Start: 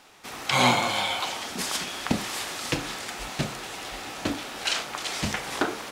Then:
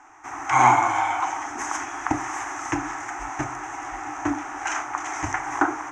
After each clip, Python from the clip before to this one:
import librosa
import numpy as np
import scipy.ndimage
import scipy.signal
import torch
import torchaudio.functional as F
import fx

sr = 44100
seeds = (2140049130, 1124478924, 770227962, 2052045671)

y = fx.curve_eq(x, sr, hz=(130.0, 190.0, 300.0, 510.0, 790.0, 2000.0, 4400.0, 6200.0, 11000.0), db=(0, -28, 9, -14, 10, 3, -27, 4, -23))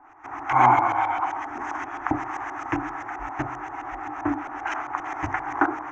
y = fx.filter_lfo_lowpass(x, sr, shape='saw_up', hz=7.6, low_hz=770.0, high_hz=3800.0, q=0.78)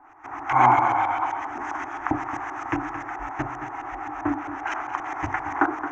y = x + 10.0 ** (-11.5 / 20.0) * np.pad(x, (int(222 * sr / 1000.0), 0))[:len(x)]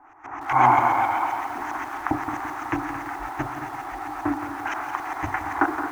y = fx.echo_crushed(x, sr, ms=169, feedback_pct=55, bits=7, wet_db=-9)